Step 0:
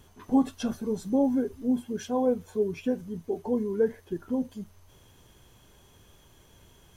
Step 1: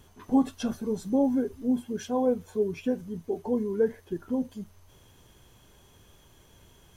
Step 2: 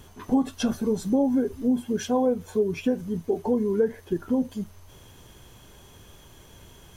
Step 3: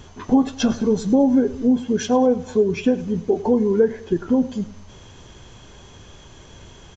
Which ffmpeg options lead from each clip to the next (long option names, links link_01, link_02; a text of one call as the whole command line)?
ffmpeg -i in.wav -af anull out.wav
ffmpeg -i in.wav -af "acompressor=threshold=-27dB:ratio=3,volume=7dB" out.wav
ffmpeg -i in.wav -af "aecho=1:1:102|204|306|408:0.126|0.0567|0.0255|0.0115,aresample=16000,aresample=44100,volume=6dB" out.wav